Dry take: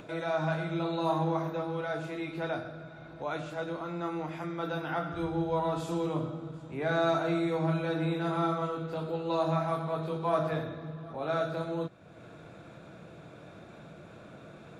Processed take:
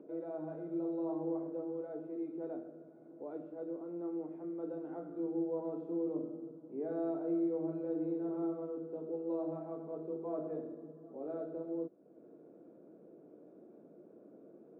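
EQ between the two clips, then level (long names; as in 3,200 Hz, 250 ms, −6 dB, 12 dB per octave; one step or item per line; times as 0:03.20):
flat-topped band-pass 330 Hz, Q 1.4
spectral tilt +2.5 dB per octave
+2.0 dB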